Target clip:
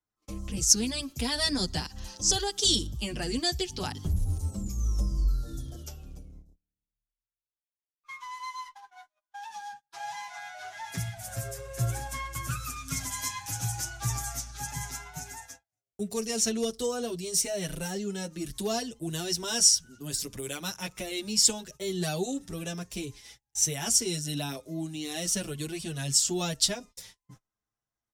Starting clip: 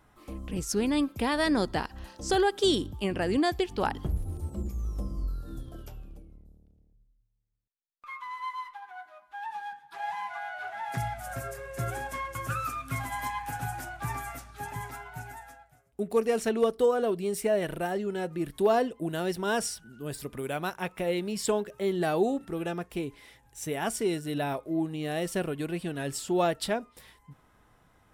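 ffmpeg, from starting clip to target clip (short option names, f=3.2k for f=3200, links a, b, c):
-filter_complex "[0:a]acontrast=28,asetnsamples=n=441:p=0,asendcmd='10.9 equalizer g 6;12.76 equalizer g 15',equalizer=f=6.1k:t=o:w=0.88:g=12.5,acrossover=split=180|3000[a][b][c];[b]acompressor=threshold=-56dB:ratio=1.5[d];[a][d][c]amix=inputs=3:normalize=0,agate=range=-35dB:threshold=-45dB:ratio=16:detection=peak,asplit=2[e][f];[f]adelay=7.2,afreqshift=0.44[g];[e][g]amix=inputs=2:normalize=1,volume=2dB"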